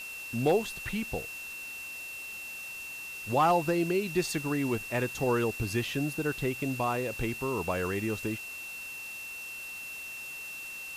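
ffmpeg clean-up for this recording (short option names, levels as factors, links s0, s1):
-af "bandreject=f=2700:w=30,afftdn=nr=30:nf=-41"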